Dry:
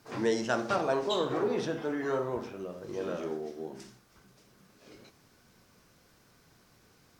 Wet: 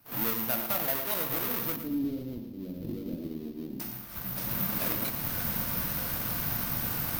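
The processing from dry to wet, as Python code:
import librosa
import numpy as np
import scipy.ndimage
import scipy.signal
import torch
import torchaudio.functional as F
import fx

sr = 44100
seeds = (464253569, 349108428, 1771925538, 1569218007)

y = fx.halfwave_hold(x, sr)
y = fx.recorder_agc(y, sr, target_db=-19.0, rise_db_per_s=24.0, max_gain_db=30)
y = fx.peak_eq(y, sr, hz=400.0, db=-11.5, octaves=0.51)
y = (np.kron(scipy.signal.resample_poly(y, 1, 3), np.eye(3)[0]) * 3)[:len(y)]
y = fx.curve_eq(y, sr, hz=(180.0, 270.0, 1200.0, 4300.0, 8600.0), db=(0, 8, -28, -15, -26), at=(1.76, 3.8))
y = fx.echo_feedback(y, sr, ms=113, feedback_pct=39, wet_db=-10)
y = y * librosa.db_to_amplitude(-8.5)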